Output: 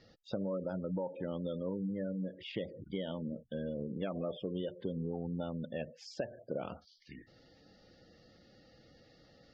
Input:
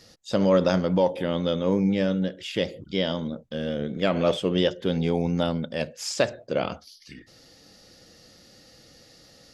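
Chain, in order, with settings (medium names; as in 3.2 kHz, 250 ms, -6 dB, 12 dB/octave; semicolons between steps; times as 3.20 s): spectral gate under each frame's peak -20 dB strong; compression 6:1, threshold -28 dBFS, peak gain reduction 12 dB; distance through air 240 m; trim -5.5 dB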